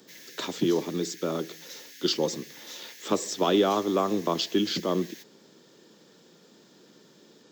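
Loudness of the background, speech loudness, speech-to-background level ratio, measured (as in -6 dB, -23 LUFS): -44.5 LUFS, -27.5 LUFS, 17.0 dB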